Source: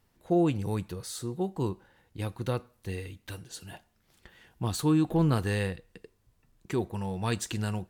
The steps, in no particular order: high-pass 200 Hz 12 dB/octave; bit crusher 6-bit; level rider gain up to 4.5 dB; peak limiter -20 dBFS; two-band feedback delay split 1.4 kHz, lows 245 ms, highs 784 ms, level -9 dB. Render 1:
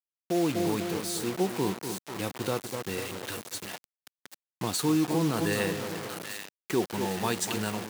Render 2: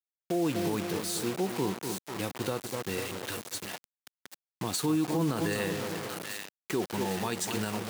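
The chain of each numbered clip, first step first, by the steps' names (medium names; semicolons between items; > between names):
two-band feedback delay > peak limiter > level rider > bit crusher > high-pass; level rider > two-band feedback delay > bit crusher > high-pass > peak limiter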